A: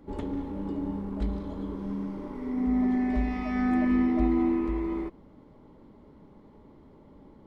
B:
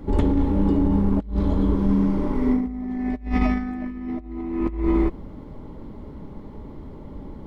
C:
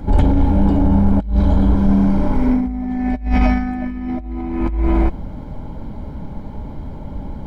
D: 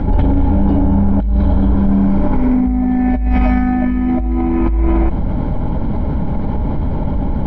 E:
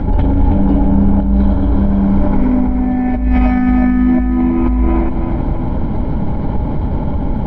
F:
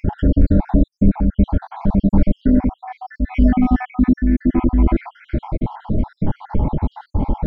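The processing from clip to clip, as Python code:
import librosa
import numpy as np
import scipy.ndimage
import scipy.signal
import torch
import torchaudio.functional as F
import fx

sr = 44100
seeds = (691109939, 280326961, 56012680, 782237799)

y1 = fx.low_shelf(x, sr, hz=110.0, db=11.5)
y1 = fx.over_compress(y1, sr, threshold_db=-28.0, ratio=-0.5)
y1 = y1 * 10.0 ** (7.0 / 20.0)
y2 = 10.0 ** (-14.5 / 20.0) * np.tanh(y1 / 10.0 ** (-14.5 / 20.0))
y2 = y2 + 0.52 * np.pad(y2, (int(1.3 * sr / 1000.0), 0))[:len(y2)]
y2 = y2 * 10.0 ** (7.0 / 20.0)
y3 = fx.air_absorb(y2, sr, metres=220.0)
y3 = fx.env_flatten(y3, sr, amount_pct=70)
y3 = y3 * 10.0 ** (-1.5 / 20.0)
y4 = fx.echo_feedback(y3, sr, ms=323, feedback_pct=47, wet_db=-7.0)
y5 = fx.spec_dropout(y4, sr, seeds[0], share_pct=69)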